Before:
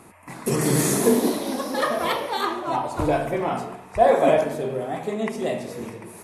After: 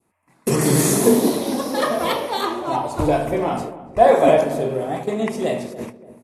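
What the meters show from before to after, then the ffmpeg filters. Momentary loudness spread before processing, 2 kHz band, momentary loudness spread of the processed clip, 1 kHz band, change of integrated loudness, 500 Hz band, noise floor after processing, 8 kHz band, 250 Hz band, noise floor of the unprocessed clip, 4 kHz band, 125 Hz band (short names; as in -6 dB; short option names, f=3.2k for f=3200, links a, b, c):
12 LU, +1.0 dB, 13 LU, +3.0 dB, +3.5 dB, +4.0 dB, -60 dBFS, +4.0 dB, +4.0 dB, -45 dBFS, +3.0 dB, +4.0 dB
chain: -filter_complex "[0:a]agate=range=-24dB:threshold=-32dB:ratio=16:detection=peak,adynamicequalizer=threshold=0.0126:dfrequency=1600:dqfactor=1:tfrequency=1600:tqfactor=1:attack=5:release=100:ratio=0.375:range=2.5:mode=cutabove:tftype=bell,asplit=2[a][b];[b]adelay=290,lowpass=f=860:p=1,volume=-13.5dB,asplit=2[c][d];[d]adelay=290,lowpass=f=860:p=1,volume=0.43,asplit=2[e][f];[f]adelay=290,lowpass=f=860:p=1,volume=0.43,asplit=2[g][h];[h]adelay=290,lowpass=f=860:p=1,volume=0.43[i];[c][e][g][i]amix=inputs=4:normalize=0[j];[a][j]amix=inputs=2:normalize=0,volume=4dB"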